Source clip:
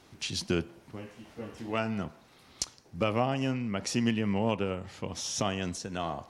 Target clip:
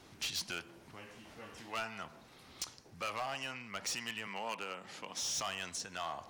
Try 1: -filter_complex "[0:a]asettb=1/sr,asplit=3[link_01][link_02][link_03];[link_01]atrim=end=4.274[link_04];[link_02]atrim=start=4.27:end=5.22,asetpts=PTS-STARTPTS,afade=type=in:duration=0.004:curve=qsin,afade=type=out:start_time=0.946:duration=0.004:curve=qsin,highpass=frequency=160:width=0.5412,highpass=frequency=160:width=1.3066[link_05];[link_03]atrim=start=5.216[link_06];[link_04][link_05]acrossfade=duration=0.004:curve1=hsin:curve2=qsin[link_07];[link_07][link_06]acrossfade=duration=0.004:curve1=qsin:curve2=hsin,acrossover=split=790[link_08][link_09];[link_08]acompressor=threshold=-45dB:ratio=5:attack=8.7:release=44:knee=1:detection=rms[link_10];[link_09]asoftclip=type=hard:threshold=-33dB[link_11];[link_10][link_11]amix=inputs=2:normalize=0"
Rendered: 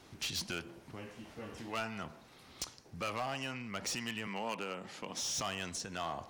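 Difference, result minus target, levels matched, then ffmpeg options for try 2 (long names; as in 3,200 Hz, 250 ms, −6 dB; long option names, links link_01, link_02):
downward compressor: peak gain reduction −8.5 dB
-filter_complex "[0:a]asettb=1/sr,asplit=3[link_01][link_02][link_03];[link_01]atrim=end=4.274[link_04];[link_02]atrim=start=4.27:end=5.22,asetpts=PTS-STARTPTS,afade=type=in:duration=0.004:curve=qsin,afade=type=out:start_time=0.946:duration=0.004:curve=qsin,highpass=frequency=160:width=0.5412,highpass=frequency=160:width=1.3066[link_05];[link_03]atrim=start=5.216[link_06];[link_04][link_05]acrossfade=duration=0.004:curve1=hsin:curve2=qsin[link_07];[link_07][link_06]acrossfade=duration=0.004:curve1=qsin:curve2=hsin,acrossover=split=790[link_08][link_09];[link_08]acompressor=threshold=-55.5dB:ratio=5:attack=8.7:release=44:knee=1:detection=rms[link_10];[link_09]asoftclip=type=hard:threshold=-33dB[link_11];[link_10][link_11]amix=inputs=2:normalize=0"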